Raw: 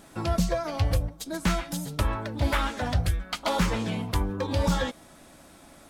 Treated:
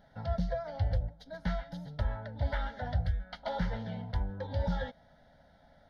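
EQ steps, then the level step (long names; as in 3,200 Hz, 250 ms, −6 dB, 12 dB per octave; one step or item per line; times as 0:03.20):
head-to-tape spacing loss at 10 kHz 23 dB
phaser with its sweep stopped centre 1,700 Hz, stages 8
−4.5 dB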